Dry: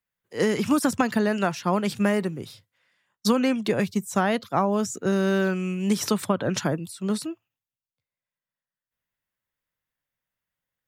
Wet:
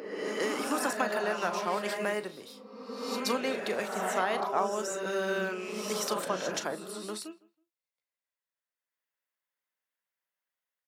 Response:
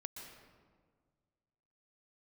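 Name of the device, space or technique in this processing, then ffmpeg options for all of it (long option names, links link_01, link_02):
ghost voice: -filter_complex "[0:a]asplit=2[link_01][link_02];[link_02]adelay=38,volume=-12dB[link_03];[link_01][link_03]amix=inputs=2:normalize=0,areverse[link_04];[1:a]atrim=start_sample=2205[link_05];[link_04][link_05]afir=irnorm=-1:irlink=0,areverse,highpass=460,asplit=2[link_06][link_07];[link_07]adelay=161,lowpass=frequency=1600:poles=1,volume=-22dB,asplit=2[link_08][link_09];[link_09]adelay=161,lowpass=frequency=1600:poles=1,volume=0.33[link_10];[link_06][link_08][link_10]amix=inputs=3:normalize=0"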